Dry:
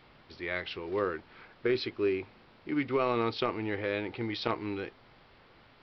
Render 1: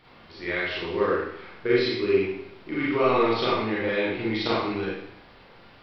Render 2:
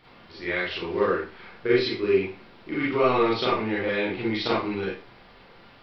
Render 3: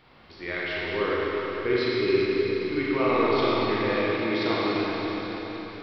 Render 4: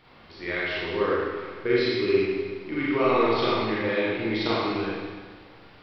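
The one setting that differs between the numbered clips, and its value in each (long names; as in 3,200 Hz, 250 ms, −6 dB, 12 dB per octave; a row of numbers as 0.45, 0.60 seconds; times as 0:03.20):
four-comb reverb, RT60: 0.73, 0.34, 4.6, 1.5 seconds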